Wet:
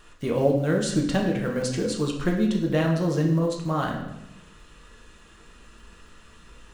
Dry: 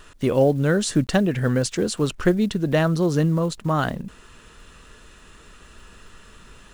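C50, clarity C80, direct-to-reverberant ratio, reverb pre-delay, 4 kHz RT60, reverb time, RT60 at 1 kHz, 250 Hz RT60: 5.5 dB, 8.0 dB, -0.5 dB, 3 ms, 0.75 s, 0.85 s, 0.85 s, 1.0 s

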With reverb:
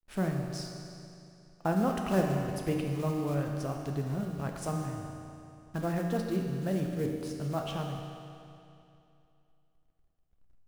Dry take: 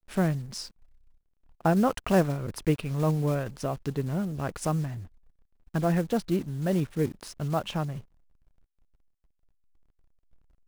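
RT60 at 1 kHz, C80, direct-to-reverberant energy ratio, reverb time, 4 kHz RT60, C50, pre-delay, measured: 2.7 s, 4.0 dB, 1.5 dB, 2.7 s, 2.5 s, 3.0 dB, 10 ms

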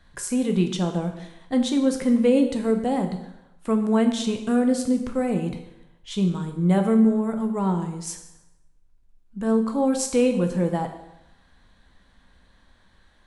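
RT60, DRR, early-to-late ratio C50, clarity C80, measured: 0.90 s, 5.0 dB, 8.5 dB, 11.0 dB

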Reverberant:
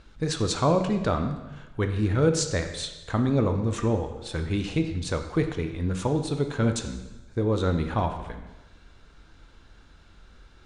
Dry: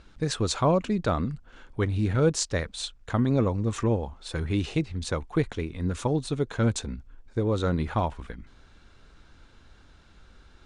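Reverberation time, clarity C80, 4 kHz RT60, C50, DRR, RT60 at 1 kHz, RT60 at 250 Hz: 1.1 s, 10.0 dB, 1.0 s, 8.5 dB, 6.0 dB, 1.1 s, 1.2 s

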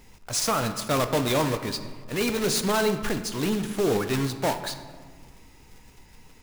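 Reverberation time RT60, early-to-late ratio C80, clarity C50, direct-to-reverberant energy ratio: 1.7 s, 12.0 dB, 10.5 dB, 8.0 dB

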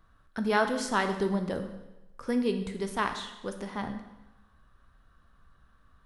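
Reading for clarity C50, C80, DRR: 9.0 dB, 11.0 dB, 6.0 dB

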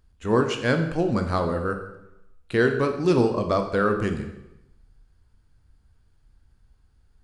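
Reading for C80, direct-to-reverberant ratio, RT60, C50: 10.5 dB, 5.5 dB, 0.85 s, 8.0 dB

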